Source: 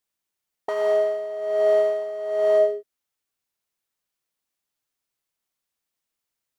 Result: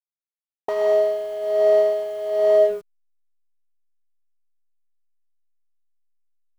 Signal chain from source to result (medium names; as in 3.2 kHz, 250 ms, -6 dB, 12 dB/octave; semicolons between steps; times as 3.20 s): low-pass 5.1 kHz 12 dB/octave; peaking EQ 1.5 kHz -7.5 dB 0.65 oct; bit crusher 9-bit; hysteresis with a dead band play -36.5 dBFS; trim +3 dB